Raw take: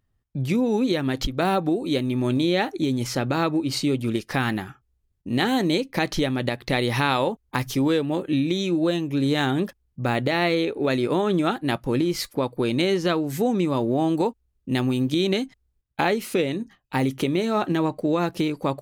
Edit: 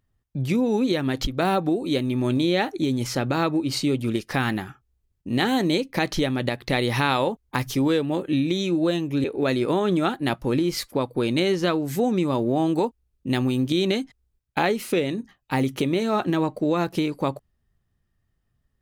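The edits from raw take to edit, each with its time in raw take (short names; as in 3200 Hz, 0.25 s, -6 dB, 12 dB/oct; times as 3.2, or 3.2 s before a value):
9.24–10.66 cut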